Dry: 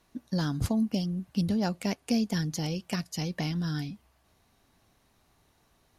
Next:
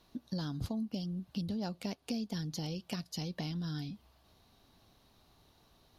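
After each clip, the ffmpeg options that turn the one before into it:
-af "equalizer=f=2k:t=o:w=1:g=-6,equalizer=f=4k:t=o:w=1:g=7,equalizer=f=8k:t=o:w=1:g=-8,acompressor=threshold=-41dB:ratio=2.5,volume=1.5dB"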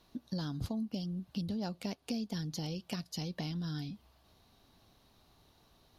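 -af anull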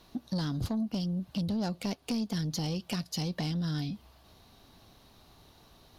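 -af "asoftclip=type=tanh:threshold=-33dB,volume=7.5dB"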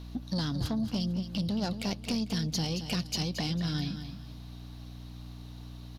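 -filter_complex "[0:a]acrossover=split=4700[a][b];[a]crystalizer=i=3:c=0[c];[c][b]amix=inputs=2:normalize=0,aeval=exprs='val(0)+0.00794*(sin(2*PI*60*n/s)+sin(2*PI*2*60*n/s)/2+sin(2*PI*3*60*n/s)/3+sin(2*PI*4*60*n/s)/4+sin(2*PI*5*60*n/s)/5)':c=same,aecho=1:1:224|448|672:0.316|0.0917|0.0266"

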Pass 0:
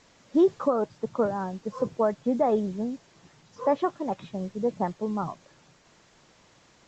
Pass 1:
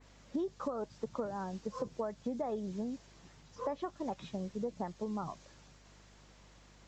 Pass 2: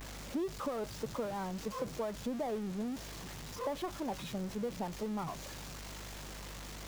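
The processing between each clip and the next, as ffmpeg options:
-af "adynamicequalizer=threshold=0.00282:dfrequency=5600:dqfactor=0.81:tfrequency=5600:tqfactor=0.81:attack=5:release=100:ratio=0.375:range=3:mode=boostabove:tftype=bell,acompressor=threshold=-30dB:ratio=6,aeval=exprs='val(0)+0.00141*(sin(2*PI*50*n/s)+sin(2*PI*2*50*n/s)/2+sin(2*PI*3*50*n/s)/3+sin(2*PI*4*50*n/s)/4+sin(2*PI*5*50*n/s)/5)':c=same,volume=-4dB"
-af "aeval=exprs='val(0)+0.5*0.0112*sgn(val(0))':c=same,volume=-2dB"

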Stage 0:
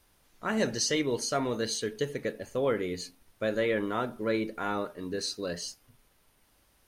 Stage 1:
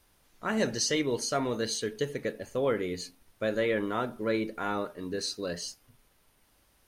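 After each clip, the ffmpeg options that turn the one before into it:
-af anull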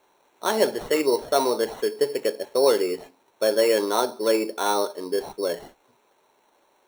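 -af "highpass=380,equalizer=f=390:t=q:w=4:g=7,equalizer=f=590:t=q:w=4:g=3,equalizer=f=910:t=q:w=4:g=8,equalizer=f=1.3k:t=q:w=4:g=-3,equalizer=f=1.9k:t=q:w=4:g=-4,equalizer=f=3.1k:t=q:w=4:g=-10,lowpass=f=3.4k:w=0.5412,lowpass=f=3.4k:w=1.3066,acrusher=samples=9:mix=1:aa=0.000001,volume=7dB"

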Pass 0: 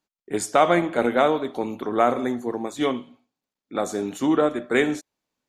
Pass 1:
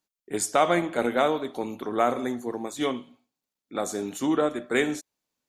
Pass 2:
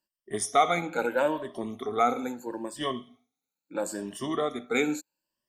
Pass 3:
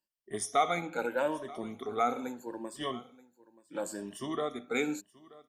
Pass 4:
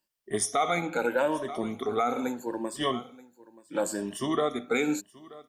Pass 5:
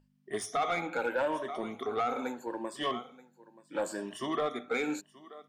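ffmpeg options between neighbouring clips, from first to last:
-af "highshelf=f=4.8k:g=8,volume=-4dB"
-af "afftfilt=real='re*pow(10,17/40*sin(2*PI*(1.3*log(max(b,1)*sr/1024/100)/log(2)-(0.76)*(pts-256)/sr)))':imag='im*pow(10,17/40*sin(2*PI*(1.3*log(max(b,1)*sr/1024/100)/log(2)-(0.76)*(pts-256)/sr)))':win_size=1024:overlap=0.75,volume=-5.5dB"
-af "aecho=1:1:930:0.0891,volume=-5dB"
-af "alimiter=limit=-23dB:level=0:latency=1:release=123,volume=7.5dB"
-filter_complex "[0:a]aeval=exprs='val(0)+0.002*(sin(2*PI*50*n/s)+sin(2*PI*2*50*n/s)/2+sin(2*PI*3*50*n/s)/3+sin(2*PI*4*50*n/s)/4+sin(2*PI*5*50*n/s)/5)':c=same,bandreject=f=50:t=h:w=6,bandreject=f=100:t=h:w=6,asplit=2[a][b];[b]highpass=f=720:p=1,volume=12dB,asoftclip=type=tanh:threshold=-15dB[c];[a][c]amix=inputs=2:normalize=0,lowpass=f=2.5k:p=1,volume=-6dB,volume=-6dB"

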